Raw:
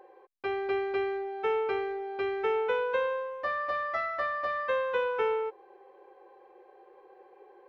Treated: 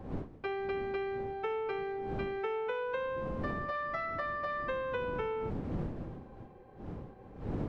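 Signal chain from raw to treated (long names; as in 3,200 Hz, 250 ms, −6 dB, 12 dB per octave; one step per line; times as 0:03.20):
wind on the microphone 280 Hz −37 dBFS
downward compressor, threshold −30 dBFS, peak gain reduction 7.5 dB
level −2 dB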